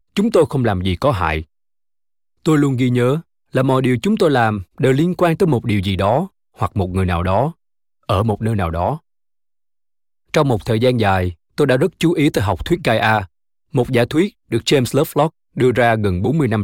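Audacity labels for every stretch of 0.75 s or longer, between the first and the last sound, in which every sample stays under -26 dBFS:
1.420000	2.460000	silence
8.960000	10.340000	silence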